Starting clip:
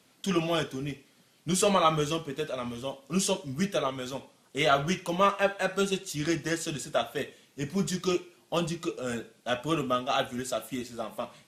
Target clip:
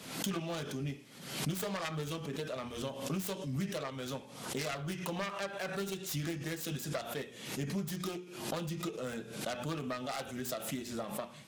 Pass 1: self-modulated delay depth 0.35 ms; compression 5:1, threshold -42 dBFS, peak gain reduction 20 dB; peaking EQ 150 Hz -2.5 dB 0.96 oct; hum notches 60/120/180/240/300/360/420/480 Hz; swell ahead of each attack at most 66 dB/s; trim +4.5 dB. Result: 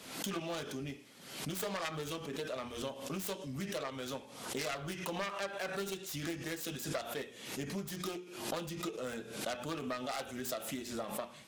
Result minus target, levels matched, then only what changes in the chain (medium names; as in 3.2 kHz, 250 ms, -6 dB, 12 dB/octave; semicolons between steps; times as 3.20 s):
125 Hz band -5.0 dB
change: peaking EQ 150 Hz +5 dB 0.96 oct